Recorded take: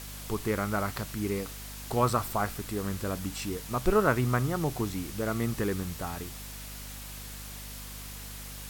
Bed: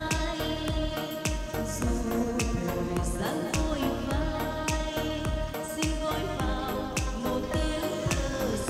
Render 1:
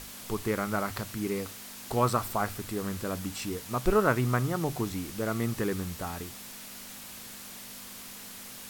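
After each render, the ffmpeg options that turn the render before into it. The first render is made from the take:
ffmpeg -i in.wav -af "bandreject=frequency=50:width_type=h:width=6,bandreject=frequency=100:width_type=h:width=6,bandreject=frequency=150:width_type=h:width=6" out.wav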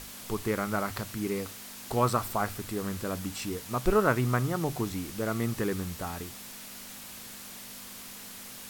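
ffmpeg -i in.wav -af anull out.wav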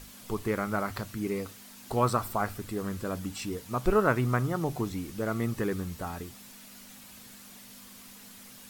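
ffmpeg -i in.wav -af "afftdn=noise_reduction=7:noise_floor=-45" out.wav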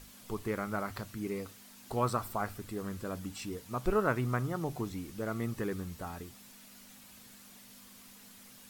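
ffmpeg -i in.wav -af "volume=-5dB" out.wav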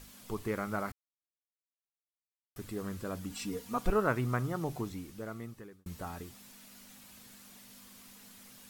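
ffmpeg -i in.wav -filter_complex "[0:a]asettb=1/sr,asplit=3[link_01][link_02][link_03];[link_01]atrim=end=3.304[link_04];[link_02]atrim=start=3.3:end=3.9,asetpts=PTS-STARTPTS,afade=type=in:duration=0.004:curve=qsin,afade=type=out:start_time=0.596:duration=0.004:curve=qsin,aecho=1:1:4.2:0.79,atrim=end_sample=26460[link_05];[link_03]atrim=start=3.896[link_06];[link_04][link_05]acrossfade=duration=0.004:curve1=hsin:curve2=qsin[link_07];[link_07][link_06]acrossfade=duration=0.004:curve1=qsin:curve2=hsin,asplit=4[link_08][link_09][link_10][link_11];[link_08]atrim=end=0.92,asetpts=PTS-STARTPTS,afade=type=out:start_time=0.916:duration=0.004:curve=hsin[link_12];[link_09]atrim=start=0.92:end=2.56,asetpts=PTS-STARTPTS,volume=0[link_13];[link_10]atrim=start=2.56:end=5.86,asetpts=PTS-STARTPTS,afade=type=in:duration=0.004:curve=hsin,afade=type=out:start_time=2.18:duration=1.12[link_14];[link_11]atrim=start=5.86,asetpts=PTS-STARTPTS,afade=type=in:duration=0.004:curve=hsin[link_15];[link_12][link_13][link_14][link_15]concat=n=4:v=0:a=1" out.wav

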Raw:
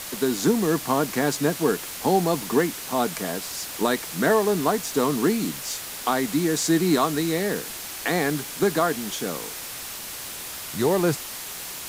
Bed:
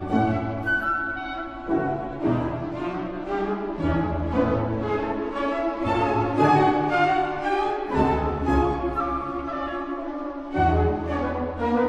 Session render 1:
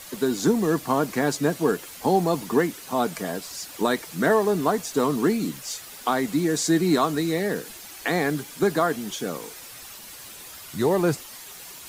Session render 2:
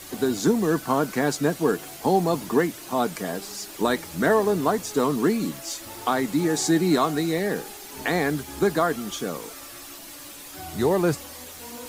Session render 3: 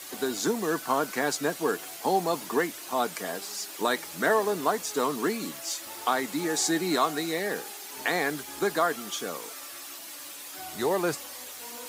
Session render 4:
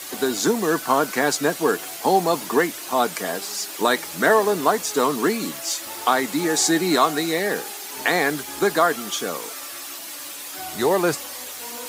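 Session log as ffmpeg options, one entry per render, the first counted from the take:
ffmpeg -i in.wav -af "afftdn=noise_reduction=9:noise_floor=-36" out.wav
ffmpeg -i in.wav -i bed.wav -filter_complex "[1:a]volume=-19.5dB[link_01];[0:a][link_01]amix=inputs=2:normalize=0" out.wav
ffmpeg -i in.wav -af "highpass=frequency=660:poles=1" out.wav
ffmpeg -i in.wav -af "volume=7dB" out.wav

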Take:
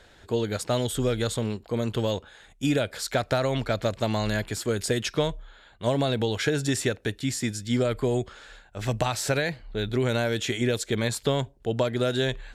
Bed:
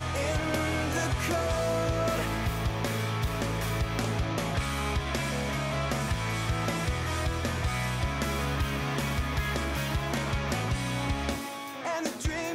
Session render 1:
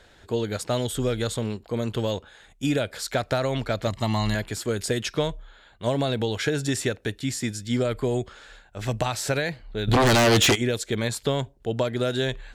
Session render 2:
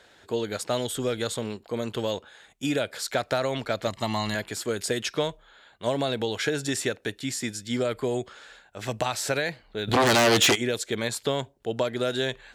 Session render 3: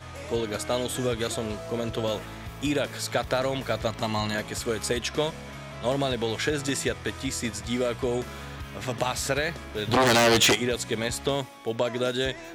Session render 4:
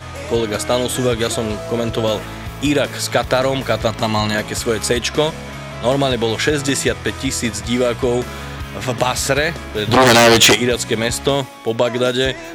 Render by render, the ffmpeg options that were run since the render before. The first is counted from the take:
ffmpeg -i in.wav -filter_complex "[0:a]asettb=1/sr,asplit=3[link_01][link_02][link_03];[link_01]atrim=end=3.874[link_04];[link_02]atrim=start=3.87:end=4.35,asetpts=PTS-STARTPTS,afade=type=in:duration=0.004:curve=qsin,afade=type=out:start_time=0.476:duration=0.004:curve=qsin,aecho=1:1:1:0.66,atrim=end_sample=21168[link_05];[link_03]atrim=start=4.346[link_06];[link_04][link_05]acrossfade=duration=0.004:curve1=hsin:curve2=qsin[link_07];[link_07][link_06]acrossfade=duration=0.004:curve1=qsin:curve2=hsin,asplit=3[link_08][link_09][link_10];[link_08]afade=type=out:start_time=9.87:duration=0.02[link_11];[link_09]aeval=exprs='0.2*sin(PI/2*3.55*val(0)/0.2)':channel_layout=same,afade=type=in:start_time=9.87:duration=0.02,afade=type=out:start_time=10.54:duration=0.02[link_12];[link_10]afade=type=in:start_time=10.54:duration=0.02[link_13];[link_11][link_12][link_13]amix=inputs=3:normalize=0" out.wav
ffmpeg -i in.wav -af "highpass=frequency=270:poles=1" out.wav
ffmpeg -i in.wav -i bed.wav -filter_complex "[1:a]volume=-9.5dB[link_01];[0:a][link_01]amix=inputs=2:normalize=0" out.wav
ffmpeg -i in.wav -af "volume=10dB,alimiter=limit=-1dB:level=0:latency=1" out.wav

